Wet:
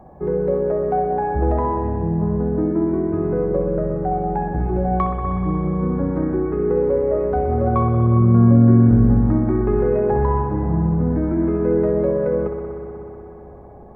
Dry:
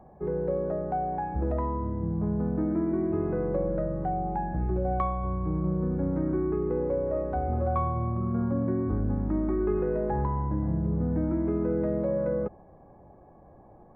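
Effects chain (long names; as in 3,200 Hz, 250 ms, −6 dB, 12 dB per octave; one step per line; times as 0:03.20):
0:01.98–0:04.12: high-shelf EQ 2,200 Hz −11.5 dB
spring reverb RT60 3.5 s, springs 60 ms, chirp 65 ms, DRR 1.5 dB
level +7.5 dB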